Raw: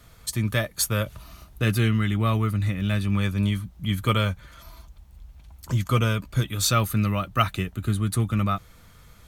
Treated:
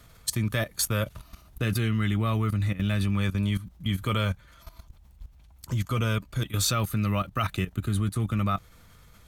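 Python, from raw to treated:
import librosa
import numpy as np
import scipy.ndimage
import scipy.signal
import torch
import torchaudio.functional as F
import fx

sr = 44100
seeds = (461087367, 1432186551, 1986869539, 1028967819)

y = fx.level_steps(x, sr, step_db=14)
y = y * 10.0 ** (3.0 / 20.0)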